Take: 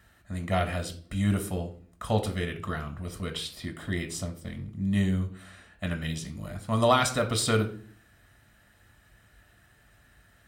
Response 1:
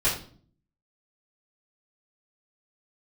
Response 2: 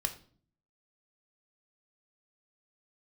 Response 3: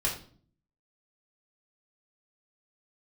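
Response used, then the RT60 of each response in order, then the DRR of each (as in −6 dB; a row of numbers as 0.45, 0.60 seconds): 2; 0.45, 0.45, 0.45 seconds; −12.0, 5.0, −5.0 decibels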